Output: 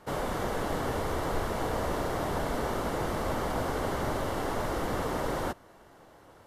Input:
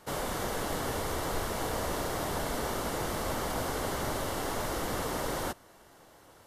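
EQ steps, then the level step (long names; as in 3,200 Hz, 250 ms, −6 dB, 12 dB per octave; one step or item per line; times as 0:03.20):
high-shelf EQ 3,100 Hz −10.5 dB
+3.0 dB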